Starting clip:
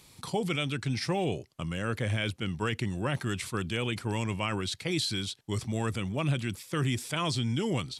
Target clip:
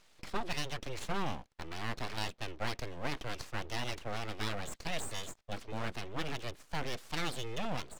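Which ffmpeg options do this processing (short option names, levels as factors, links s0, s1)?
-filter_complex "[0:a]highpass=f=62:p=1,acrossover=split=190 4400:gain=0.178 1 0.0708[s0][s1][s2];[s0][s1][s2]amix=inputs=3:normalize=0,aeval=exprs='abs(val(0))':c=same,volume=0.841"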